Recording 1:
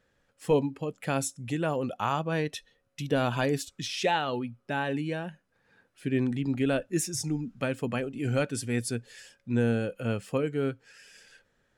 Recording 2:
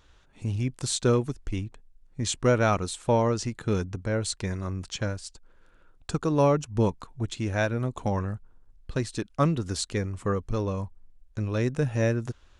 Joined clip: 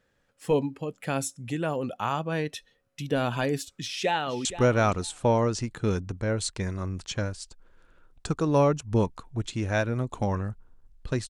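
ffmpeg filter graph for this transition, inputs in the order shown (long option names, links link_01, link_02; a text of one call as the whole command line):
ffmpeg -i cue0.wav -i cue1.wav -filter_complex "[0:a]apad=whole_dur=11.29,atrim=end=11.29,atrim=end=4.452[link_01];[1:a]atrim=start=2.288:end=9.13[link_02];[link_01][link_02]acrossfade=duration=0.004:curve1=hsin:curve2=hsin,asplit=2[link_03][link_04];[link_04]afade=type=in:start_time=3.78:duration=0.01,afade=type=out:start_time=4.45:duration=0.01,aecho=0:1:470|940:0.211349|0.0317023[link_05];[link_03][link_05]amix=inputs=2:normalize=0" out.wav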